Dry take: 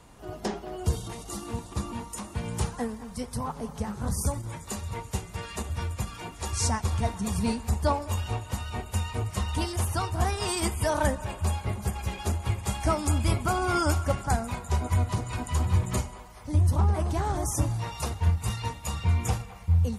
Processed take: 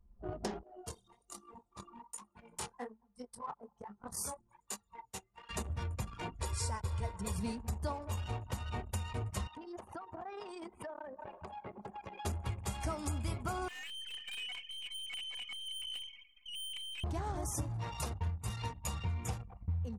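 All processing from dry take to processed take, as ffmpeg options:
-filter_complex "[0:a]asettb=1/sr,asplit=3[s0][s1][s2];[s0]atrim=end=0.634[s3];[s1]atrim=start=0.63:end=5.49,asetpts=PTS-STARTPTS,afade=t=in:d=0.004:c=qsin,afade=t=out:st=4.856:d=0.004:c=qsin,highpass=f=920:p=1,flanger=delay=19.5:depth=6.7:speed=1.2[s4];[s2]atrim=start=5.486[s5];[s3][s4]acrossfade=d=0.004:c1=hsin:c2=qsin[s6];[s6][s5]acrossfade=d=0.004:c1=qsin:c2=hsin,asettb=1/sr,asplit=3[s7][s8][s9];[s7]atrim=end=6.424[s10];[s8]atrim=start=6.42:end=7.36,asetpts=PTS-STARTPTS,afade=t=in:d=0.004:c=qsin,afade=t=out:st=0.936:d=0.004:c=qsin,bandreject=f=6200:w=6.6,aecho=1:1:2:0.63,atrim=end_sample=41454[s11];[s9]atrim=start=7.356[s12];[s10][s11]acrossfade=d=0.004:c1=hsin:c2=qsin[s13];[s13][s12]acrossfade=d=0.004:c1=qsin:c2=hsin,asettb=1/sr,asplit=3[s14][s15][s16];[s14]atrim=end=9.474[s17];[s15]atrim=start=9.47:end=12.25,asetpts=PTS-STARTPTS,afade=t=in:d=0.004:c=qsin,afade=t=out:st=2.776:d=0.004:c=qsin,highpass=290,highshelf=f=6800:g=-11.5,acompressor=threshold=0.0126:ratio=16:attack=3.2:release=140:knee=1:detection=peak[s18];[s16]atrim=start=12.246[s19];[s17][s18]acrossfade=d=0.004:c1=hsin:c2=qsin[s20];[s20][s19]acrossfade=d=0.004:c1=qsin:c2=hsin,asettb=1/sr,asplit=3[s21][s22][s23];[s21]atrim=end=13.684[s24];[s22]atrim=start=13.68:end=17.04,asetpts=PTS-STARTPTS,afade=t=in:d=0.004:c=qsin,afade=t=out:st=3.356:d=0.004:c=qsin,lowpass=f=2700:t=q:w=0.5098,lowpass=f=2700:t=q:w=0.6013,lowpass=f=2700:t=q:w=0.9,lowpass=f=2700:t=q:w=2.563,afreqshift=-3200,aeval=exprs='(tanh(89.1*val(0)+0.2)-tanh(0.2))/89.1':c=same,aecho=1:1:4:0.38,atrim=end_sample=148176[s25];[s23]atrim=start=17.036[s26];[s24][s25]acrossfade=d=0.004:c1=hsin:c2=qsin[s27];[s27][s26]acrossfade=d=0.004:c1=qsin:c2=hsin,anlmdn=0.631,acompressor=threshold=0.0158:ratio=4"

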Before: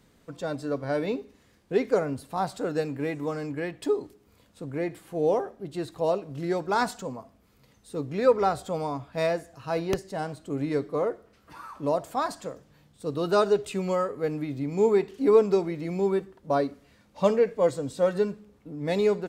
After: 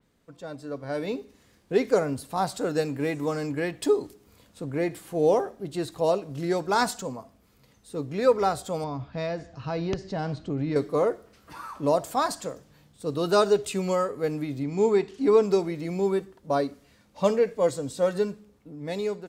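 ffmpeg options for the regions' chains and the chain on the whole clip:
-filter_complex "[0:a]asettb=1/sr,asplit=3[s0][s1][s2];[s0]atrim=end=8.844[s3];[s1]atrim=start=8.84:end=10.76,asetpts=PTS-STARTPTS,afade=t=in:d=0.004:c=qsin,afade=t=out:st=1.916:d=0.004:c=qsin,lowpass=f=5400:w=0.5412,lowpass=f=5400:w=1.3066,bass=f=250:g=7,treble=f=4000:g=-1,acompressor=threshold=0.0316:ratio=2.5:attack=3.2:release=140:knee=1:detection=peak[s4];[s2]atrim=start=10.756[s5];[s3][s4]acrossfade=d=0.004:c1=hsin:c2=qsin[s6];[s6][s5]acrossfade=d=0.004:c1=qsin:c2=hsin,asettb=1/sr,asplit=3[s7][s8][s9];[s7]atrim=end=14.634[s10];[s8]atrim=start=14.63:end=15.43,asetpts=PTS-STARTPTS,afade=t=in:d=0.004:c=qsin,afade=t=out:st=0.796:d=0.004:c=qsin,lowpass=7600,bandreject=f=520:w=5.3[s11];[s9]atrim=start=15.426[s12];[s10][s11]acrossfade=d=0.004:c1=hsin:c2=qsin[s13];[s13][s12]acrossfade=d=0.004:c1=qsin:c2=hsin,dynaudnorm=f=240:g=9:m=3.76,adynamicequalizer=threshold=0.0126:dfrequency=3700:dqfactor=0.7:tfrequency=3700:tqfactor=0.7:attack=5:release=100:ratio=0.375:range=3:mode=boostabove:tftype=highshelf,volume=0.422"

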